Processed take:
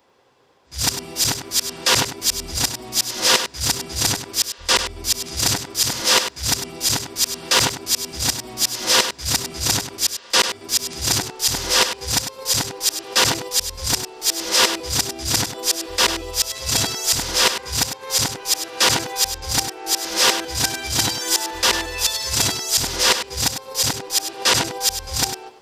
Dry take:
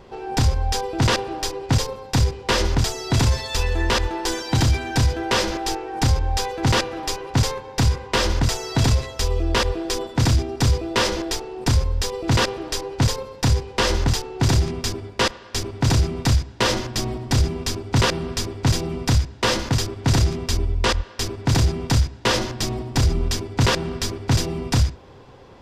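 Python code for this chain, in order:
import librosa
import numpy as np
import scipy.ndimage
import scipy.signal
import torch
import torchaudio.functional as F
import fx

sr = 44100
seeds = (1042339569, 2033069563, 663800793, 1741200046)

y = np.flip(x).copy()
y = fx.riaa(y, sr, side='recording')
y = y + 10.0 ** (-9.0 / 20.0) * np.pad(y, (int(100 * sr / 1000.0), 0))[:len(y)]
y = fx.band_widen(y, sr, depth_pct=40)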